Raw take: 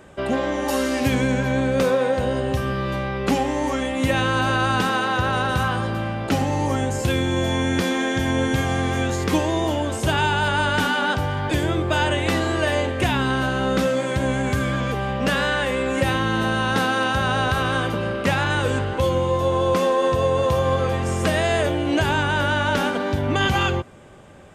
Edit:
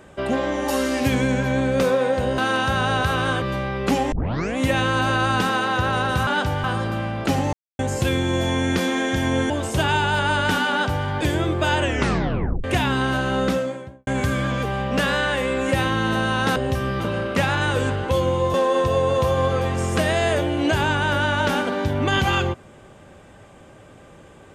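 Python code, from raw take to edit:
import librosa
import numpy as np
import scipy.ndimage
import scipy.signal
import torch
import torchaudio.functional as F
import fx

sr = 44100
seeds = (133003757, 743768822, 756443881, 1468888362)

y = fx.studio_fade_out(x, sr, start_s=13.67, length_s=0.69)
y = fx.edit(y, sr, fx.swap(start_s=2.38, length_s=0.44, other_s=16.85, other_length_s=1.04),
    fx.tape_start(start_s=3.52, length_s=0.45),
    fx.silence(start_s=6.56, length_s=0.26),
    fx.cut(start_s=8.53, length_s=1.26),
    fx.duplicate(start_s=10.99, length_s=0.37, to_s=5.67),
    fx.tape_stop(start_s=12.11, length_s=0.82),
    fx.cut(start_s=19.43, length_s=0.39), tone=tone)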